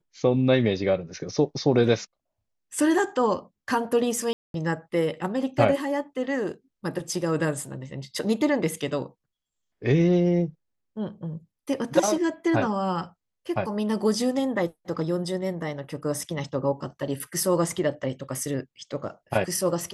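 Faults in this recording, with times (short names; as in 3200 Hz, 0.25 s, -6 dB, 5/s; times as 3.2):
4.33–4.54 gap 0.212 s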